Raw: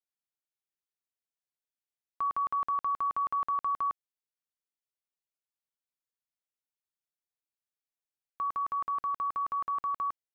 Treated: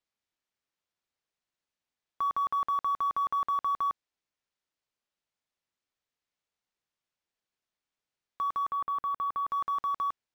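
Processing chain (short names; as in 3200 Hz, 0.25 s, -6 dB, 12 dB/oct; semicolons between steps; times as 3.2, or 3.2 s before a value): in parallel at -6.5 dB: soft clip -36.5 dBFS, distortion -11 dB; 8.67–9.5 on the sum: air absorption 190 m; decimation joined by straight lines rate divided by 3×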